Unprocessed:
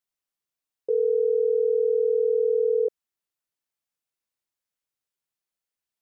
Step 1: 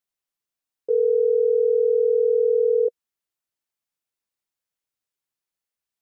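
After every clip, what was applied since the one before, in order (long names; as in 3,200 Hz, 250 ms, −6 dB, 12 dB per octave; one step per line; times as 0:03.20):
dynamic equaliser 480 Hz, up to +4 dB, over −31 dBFS, Q 5.7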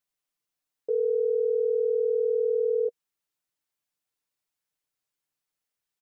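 brickwall limiter −22 dBFS, peak gain reduction 9 dB
comb filter 6.7 ms, depth 48%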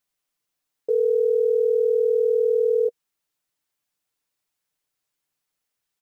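floating-point word with a short mantissa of 6 bits
level +5 dB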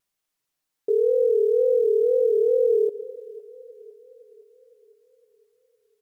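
tape wow and flutter 110 cents
echo with a time of its own for lows and highs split 470 Hz, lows 137 ms, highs 511 ms, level −16 dB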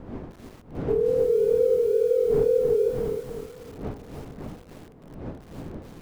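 wind on the microphone 320 Hz −36 dBFS
feedback echo at a low word length 307 ms, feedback 35%, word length 7 bits, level −6 dB
level −2.5 dB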